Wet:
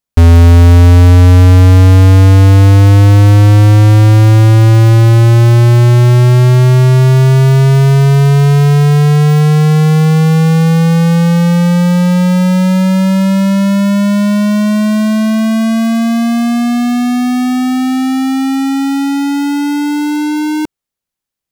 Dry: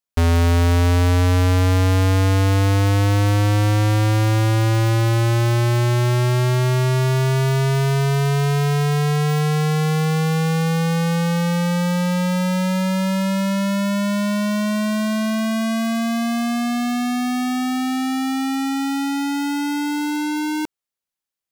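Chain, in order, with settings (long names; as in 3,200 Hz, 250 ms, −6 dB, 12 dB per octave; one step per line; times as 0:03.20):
low-shelf EQ 320 Hz +9 dB
level +4.5 dB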